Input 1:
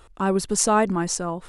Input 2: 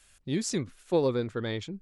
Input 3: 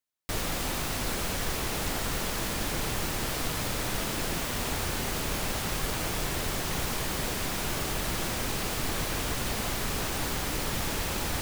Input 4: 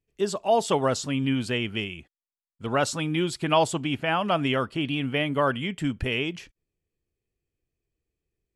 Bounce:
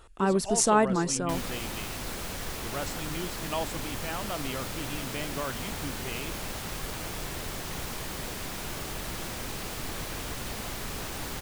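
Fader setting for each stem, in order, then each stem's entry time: −3.0, −16.5, −5.0, −11.5 decibels; 0.00, 0.00, 1.00, 0.00 seconds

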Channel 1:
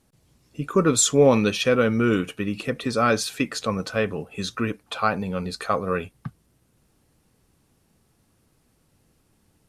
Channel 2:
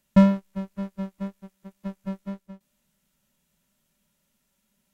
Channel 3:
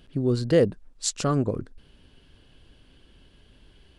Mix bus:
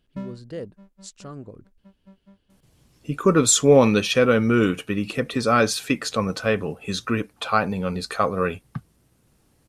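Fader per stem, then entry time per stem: +2.0, −18.5, −14.5 decibels; 2.50, 0.00, 0.00 seconds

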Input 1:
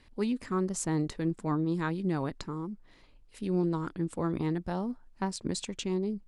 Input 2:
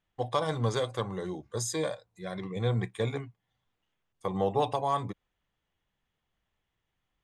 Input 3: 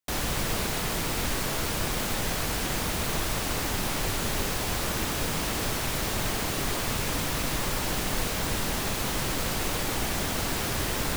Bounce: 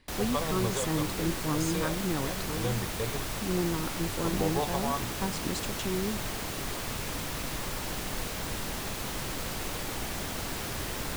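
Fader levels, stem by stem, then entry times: −1.5, −4.0, −6.0 decibels; 0.00, 0.00, 0.00 seconds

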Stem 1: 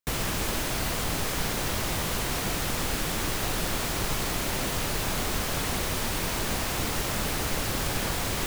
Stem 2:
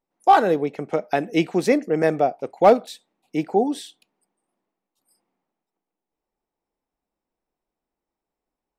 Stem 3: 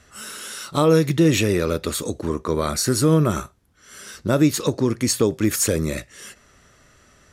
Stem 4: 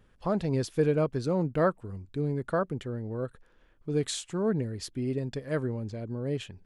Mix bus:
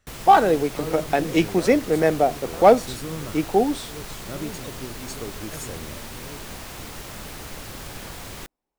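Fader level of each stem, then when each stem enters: −8.0, +0.5, −16.5, −12.0 decibels; 0.00, 0.00, 0.00, 0.00 seconds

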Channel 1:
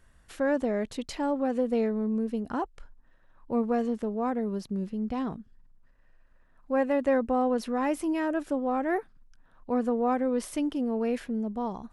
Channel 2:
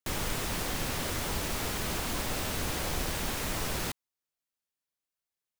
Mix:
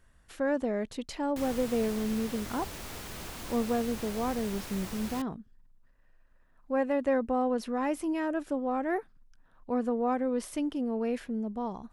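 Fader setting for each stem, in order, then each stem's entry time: −2.5, −8.5 decibels; 0.00, 1.30 seconds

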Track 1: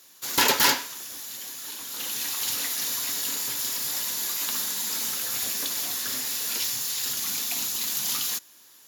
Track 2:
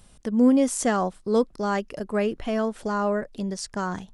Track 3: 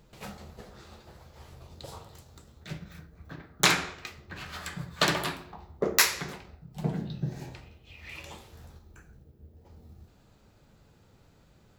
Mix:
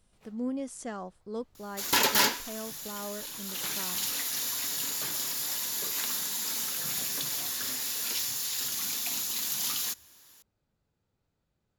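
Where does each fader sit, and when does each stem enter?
−3.5, −15.0, −19.5 decibels; 1.55, 0.00, 0.00 seconds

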